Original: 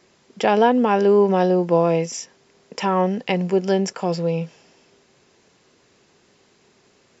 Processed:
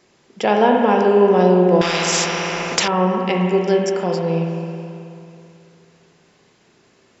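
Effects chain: spring tank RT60 2.7 s, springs 33/54 ms, chirp 60 ms, DRR 0.5 dB; 1.81–2.88 spectral compressor 4:1

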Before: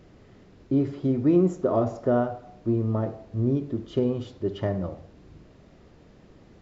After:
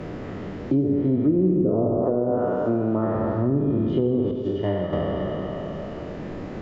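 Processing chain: spectral trails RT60 2.78 s; 1.98–3.15 HPF 170 Hz 6 dB/oct; 4.31–4.93 expander -17 dBFS; treble ducked by the level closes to 440 Hz, closed at -15.5 dBFS; non-linear reverb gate 0.49 s falling, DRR 6.5 dB; three-band squash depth 70%

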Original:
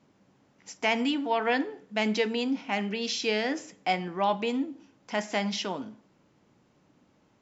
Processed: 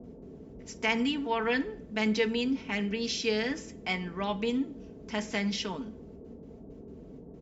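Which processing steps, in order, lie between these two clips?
bell 710 Hz -9 dB 0.51 oct; gate with hold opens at -55 dBFS; band noise 36–440 Hz -45 dBFS; comb 4.5 ms, depth 50%; gain -2.5 dB

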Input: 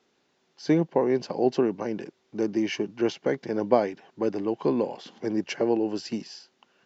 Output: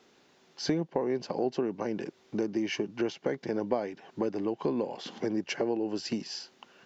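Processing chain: compressor 3:1, threshold -38 dBFS, peak gain reduction 17 dB; gain +7 dB

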